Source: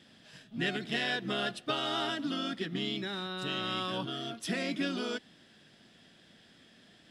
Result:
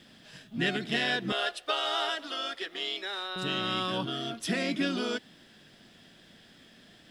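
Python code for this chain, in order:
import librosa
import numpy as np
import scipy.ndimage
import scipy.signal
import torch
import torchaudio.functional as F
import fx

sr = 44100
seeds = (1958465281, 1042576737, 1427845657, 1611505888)

y = fx.highpass(x, sr, hz=450.0, slope=24, at=(1.32, 3.36))
y = fx.dmg_noise_colour(y, sr, seeds[0], colour='pink', level_db=-76.0)
y = y * 10.0 ** (3.5 / 20.0)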